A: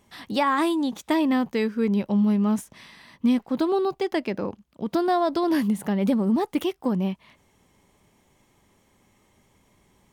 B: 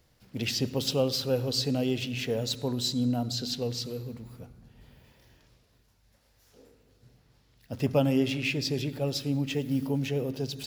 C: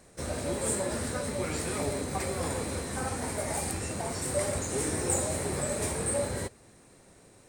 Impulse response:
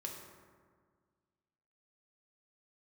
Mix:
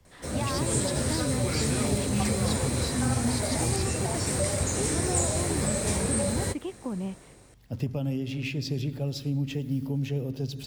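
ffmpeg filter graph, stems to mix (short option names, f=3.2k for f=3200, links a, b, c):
-filter_complex "[0:a]acrossover=split=2900[a][b];[b]acompressor=threshold=-53dB:ratio=4:attack=1:release=60[c];[a][c]amix=inputs=2:normalize=0,volume=-7.5dB[d];[1:a]alimiter=limit=-20dB:level=0:latency=1:release=296,lowshelf=f=230:g=11.5,volume=-4dB[e];[2:a]dynaudnorm=f=110:g=9:m=6.5dB,adelay=50,volume=0.5dB[f];[d][e][f]amix=inputs=3:normalize=0,acrossover=split=7500[g][h];[h]acompressor=threshold=-36dB:ratio=4:attack=1:release=60[i];[g][i]amix=inputs=2:normalize=0,acrossover=split=190|3000[j][k][l];[k]acompressor=threshold=-32dB:ratio=2.5[m];[j][m][l]amix=inputs=3:normalize=0"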